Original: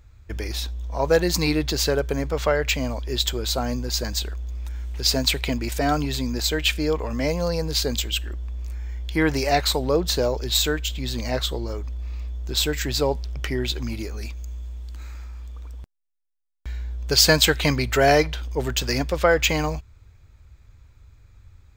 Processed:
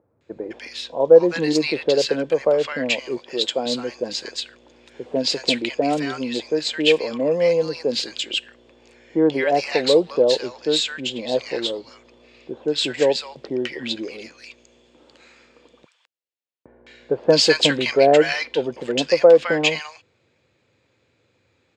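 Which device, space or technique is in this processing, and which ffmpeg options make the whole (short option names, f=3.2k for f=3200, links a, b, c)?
television speaker: -filter_complex "[0:a]asettb=1/sr,asplit=3[a][b][c];[a]atrim=end=3.174[d];[b]atrim=start=3.17:end=3.66,asetpts=PTS-STARTPTS,afade=t=in:d=0.004:c=qsin,afade=t=out:st=0.486:d=0.004:c=qsin,highpass=f=190:p=1[e];[c]atrim=start=3.656[f];[d][e]acrossfade=d=0.004:c1=hsin:c2=qsin[g];[g][f]acrossfade=d=0.004:c1=qsin:c2=hsin,highpass=f=170:w=0.5412,highpass=f=170:w=1.3066,equalizer=f=190:t=q:w=4:g=-4,equalizer=f=340:t=q:w=4:g=3,equalizer=f=510:t=q:w=4:g=9,equalizer=f=1.3k:t=q:w=4:g=-4,equalizer=f=2.8k:t=q:w=4:g=4,equalizer=f=6k:t=q:w=4:g=-7,lowpass=f=7.6k:w=0.5412,lowpass=f=7.6k:w=1.3066,equalizer=f=9.2k:w=1.6:g=-4,acrossover=split=1100[h][i];[i]adelay=210[j];[h][j]amix=inputs=2:normalize=0,volume=1dB"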